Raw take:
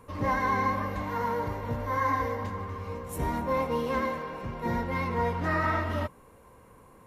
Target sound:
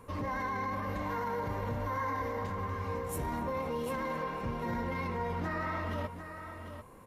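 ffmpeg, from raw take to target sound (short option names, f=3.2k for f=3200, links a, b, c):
-filter_complex "[0:a]alimiter=level_in=3.5dB:limit=-24dB:level=0:latency=1:release=40,volume=-3.5dB,asplit=2[a][b];[b]aecho=0:1:745:0.335[c];[a][c]amix=inputs=2:normalize=0"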